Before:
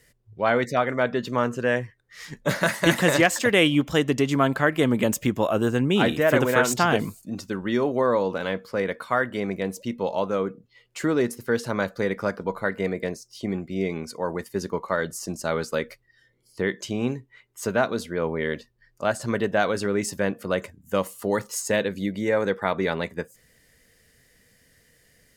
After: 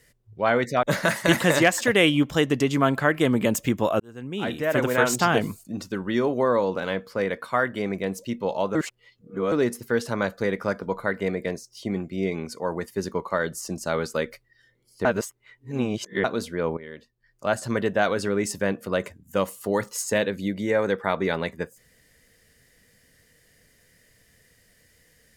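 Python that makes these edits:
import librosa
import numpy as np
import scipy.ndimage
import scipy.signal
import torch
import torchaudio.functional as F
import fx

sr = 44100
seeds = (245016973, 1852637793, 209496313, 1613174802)

y = fx.edit(x, sr, fx.cut(start_s=0.83, length_s=1.58),
    fx.fade_in_span(start_s=5.58, length_s=1.1),
    fx.reverse_span(start_s=10.33, length_s=0.77),
    fx.reverse_span(start_s=16.63, length_s=1.19),
    fx.fade_in_from(start_s=18.35, length_s=0.73, curve='qua', floor_db=-14.5), tone=tone)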